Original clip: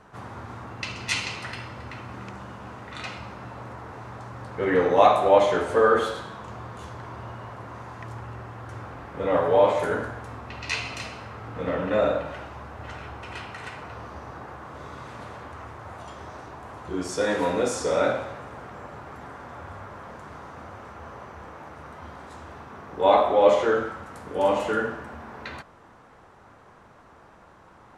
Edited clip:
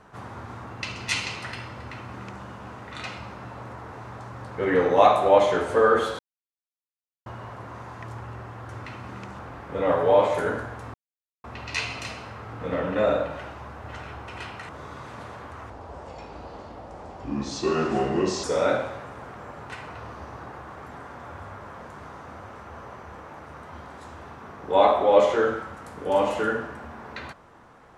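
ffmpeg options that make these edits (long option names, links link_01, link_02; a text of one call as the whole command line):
ffmpeg -i in.wav -filter_complex "[0:a]asplit=11[link_01][link_02][link_03][link_04][link_05][link_06][link_07][link_08][link_09][link_10][link_11];[link_01]atrim=end=6.19,asetpts=PTS-STARTPTS,afade=type=out:start_time=6.186:duration=0.004:curve=hsin[link_12];[link_02]atrim=start=6.19:end=7.26,asetpts=PTS-STARTPTS,volume=0[link_13];[link_03]atrim=start=7.26:end=8.842,asetpts=PTS-STARTPTS,afade=type=in:duration=0.004:curve=hsin[link_14];[link_04]atrim=start=1.888:end=2.442[link_15];[link_05]atrim=start=8.838:end=10.39,asetpts=PTS-STARTPTS,afade=type=out:start_time=1.548:duration=0.004:curve=hsin,apad=pad_dur=0.5[link_16];[link_06]atrim=start=10.39:end=13.642,asetpts=PTS-STARTPTS,afade=type=in:duration=0.004:curve=hsin[link_17];[link_07]atrim=start=14.698:end=15.714[link_18];[link_08]atrim=start=15.71:end=17.79,asetpts=PTS-STARTPTS,asetrate=33516,aresample=44100[link_19];[link_09]atrim=start=17.786:end=19.052[link_20];[link_10]atrim=start=13.638:end=14.702[link_21];[link_11]atrim=start=19.048[link_22];[link_12][link_13][link_14]concat=n=3:v=0:a=1[link_23];[link_23][link_15]acrossfade=duration=0.004:curve1=hsin:curve2=hsin[link_24];[link_16][link_17]concat=n=2:v=0:a=1[link_25];[link_24][link_25]acrossfade=duration=0.004:curve1=hsin:curve2=hsin[link_26];[link_26][link_18]acrossfade=duration=0.004:curve1=hsin:curve2=hsin[link_27];[link_27][link_19]acrossfade=duration=0.004:curve1=hsin:curve2=hsin[link_28];[link_28][link_20]acrossfade=duration=0.004:curve1=hsin:curve2=hsin[link_29];[link_29][link_21]acrossfade=duration=0.004:curve1=hsin:curve2=hsin[link_30];[link_30][link_22]acrossfade=duration=0.004:curve1=hsin:curve2=hsin" out.wav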